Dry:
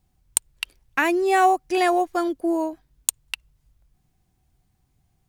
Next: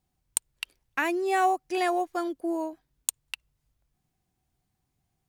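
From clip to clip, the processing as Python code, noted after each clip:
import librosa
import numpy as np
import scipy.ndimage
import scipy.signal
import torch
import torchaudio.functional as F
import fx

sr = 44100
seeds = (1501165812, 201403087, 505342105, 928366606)

y = fx.low_shelf(x, sr, hz=98.0, db=-10.0)
y = y * 10.0 ** (-6.0 / 20.0)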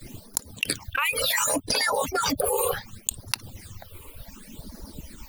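y = fx.hpss_only(x, sr, part='percussive')
y = fx.phaser_stages(y, sr, stages=8, low_hz=210.0, high_hz=2800.0, hz=0.68, feedback_pct=30)
y = fx.env_flatten(y, sr, amount_pct=100)
y = y * 10.0 ** (2.5 / 20.0)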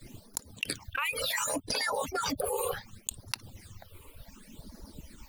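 y = fx.high_shelf(x, sr, hz=12000.0, db=-6.0)
y = y * 10.0 ** (-6.5 / 20.0)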